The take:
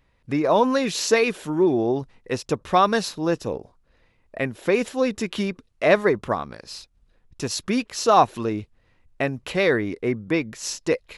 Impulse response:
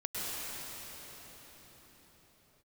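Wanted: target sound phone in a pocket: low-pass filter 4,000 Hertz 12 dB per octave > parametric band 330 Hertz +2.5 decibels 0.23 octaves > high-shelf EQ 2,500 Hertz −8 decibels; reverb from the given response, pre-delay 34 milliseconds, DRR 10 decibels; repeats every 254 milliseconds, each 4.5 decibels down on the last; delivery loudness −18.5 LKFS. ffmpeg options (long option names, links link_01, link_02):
-filter_complex "[0:a]aecho=1:1:254|508|762|1016|1270|1524|1778|2032|2286:0.596|0.357|0.214|0.129|0.0772|0.0463|0.0278|0.0167|0.01,asplit=2[link_01][link_02];[1:a]atrim=start_sample=2205,adelay=34[link_03];[link_02][link_03]afir=irnorm=-1:irlink=0,volume=-16dB[link_04];[link_01][link_04]amix=inputs=2:normalize=0,lowpass=4000,equalizer=frequency=330:width_type=o:width=0.23:gain=2.5,highshelf=frequency=2500:gain=-8,volume=3dB"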